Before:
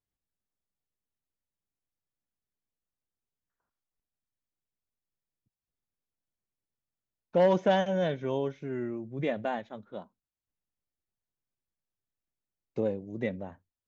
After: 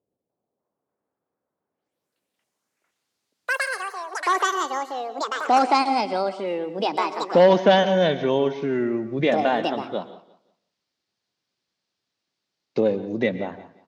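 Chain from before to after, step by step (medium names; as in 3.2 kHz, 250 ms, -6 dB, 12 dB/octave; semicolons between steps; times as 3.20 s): high-pass 180 Hz 12 dB/octave; in parallel at +1.5 dB: compression, threshold -38 dBFS, peak gain reduction 18 dB; on the sum: low-pass sweep 520 Hz -> 4.7 kHz, 2.35–3.04 s; ever faster or slower copies 296 ms, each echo +6 st, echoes 3; feedback delay 176 ms, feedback 28%, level -17.5 dB; on a send at -14 dB: reverberation RT60 0.45 s, pre-delay 108 ms; on the sum: trim +7 dB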